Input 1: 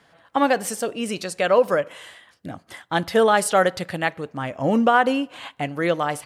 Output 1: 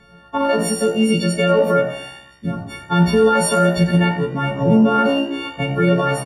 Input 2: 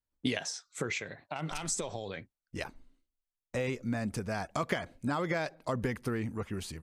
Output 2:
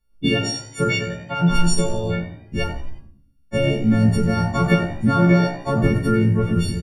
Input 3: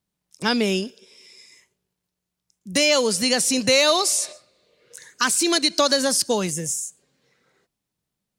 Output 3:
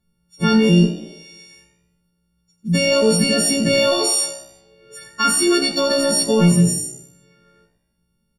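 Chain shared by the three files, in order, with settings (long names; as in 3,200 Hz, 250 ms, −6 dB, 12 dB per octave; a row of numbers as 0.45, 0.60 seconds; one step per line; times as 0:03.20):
every partial snapped to a pitch grid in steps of 4 semitones
RIAA equalisation playback
brickwall limiter −12 dBFS
echo with shifted repeats 88 ms, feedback 48%, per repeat +64 Hz, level −17 dB
rectangular room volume 520 cubic metres, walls furnished, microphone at 1.3 metres
normalise the peak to −3 dBFS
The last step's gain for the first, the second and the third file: +2.5, +7.5, +2.0 decibels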